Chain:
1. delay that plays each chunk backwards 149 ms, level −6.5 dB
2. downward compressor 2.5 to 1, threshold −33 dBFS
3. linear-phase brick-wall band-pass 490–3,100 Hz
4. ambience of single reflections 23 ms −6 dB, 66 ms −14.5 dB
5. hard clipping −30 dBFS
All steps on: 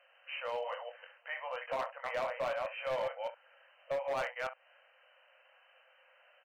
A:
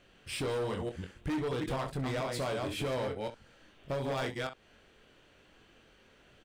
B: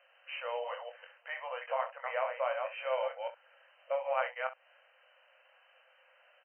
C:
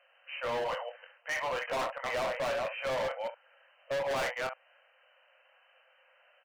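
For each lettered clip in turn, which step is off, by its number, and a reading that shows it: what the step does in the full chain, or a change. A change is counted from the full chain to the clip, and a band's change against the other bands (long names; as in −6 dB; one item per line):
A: 3, 125 Hz band +21.5 dB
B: 5, distortion level −11 dB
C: 2, average gain reduction 7.5 dB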